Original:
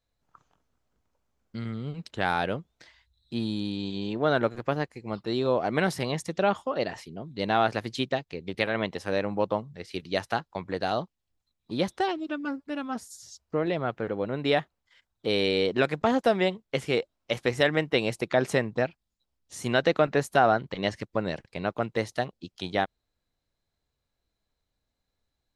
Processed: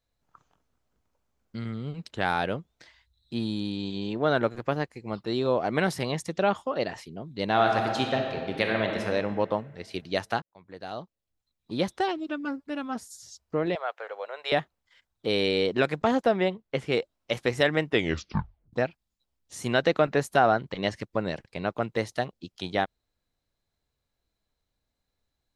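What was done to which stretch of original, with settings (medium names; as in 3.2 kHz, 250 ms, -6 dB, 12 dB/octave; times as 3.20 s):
7.50–9.01 s: reverb throw, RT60 2.1 s, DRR 2 dB
10.42–11.81 s: fade in
13.75–14.52 s: inverse Chebyshev high-pass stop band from 280 Hz
16.24–16.92 s: low-pass 2.7 kHz 6 dB/octave
17.88 s: tape stop 0.85 s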